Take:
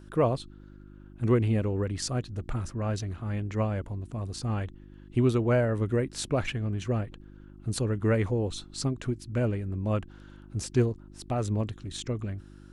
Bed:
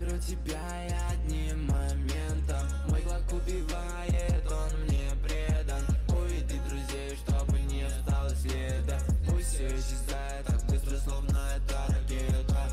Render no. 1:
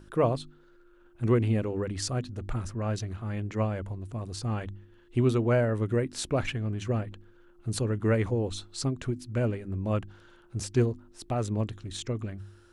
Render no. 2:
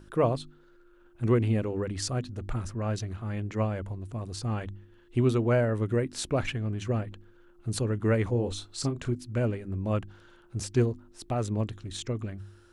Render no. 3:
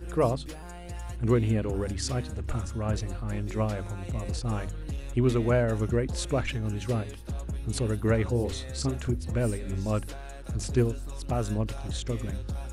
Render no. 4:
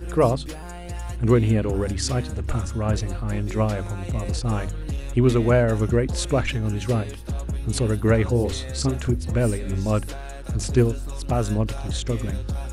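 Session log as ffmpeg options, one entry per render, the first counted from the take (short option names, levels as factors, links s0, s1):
-af "bandreject=f=50:t=h:w=4,bandreject=f=100:t=h:w=4,bandreject=f=150:t=h:w=4,bandreject=f=200:t=h:w=4,bandreject=f=250:t=h:w=4,bandreject=f=300:t=h:w=4"
-filter_complex "[0:a]asettb=1/sr,asplit=3[s0][s1][s2];[s0]atrim=end=8.304[s3];[s1]atrim=start=8.3:end=9.15,asetpts=PTS-STARTPTS,afade=t=in:d=0.004:c=qsin,afade=t=out:st=0.846:d=0.004:c=qsin,asplit=2[s4][s5];[s5]adelay=33,volume=0.355[s6];[s4][s6]amix=inputs=2:normalize=0,atrim=end_sample=37485[s7];[s2]atrim=start=9.146[s8];[s3][s7]acrossfade=d=0.004:c1=hsin:c2=qsin[s9];[s9][s8]acrossfade=d=0.004:c1=qsin:c2=hsin"
-filter_complex "[1:a]volume=0.473[s0];[0:a][s0]amix=inputs=2:normalize=0"
-af "volume=2"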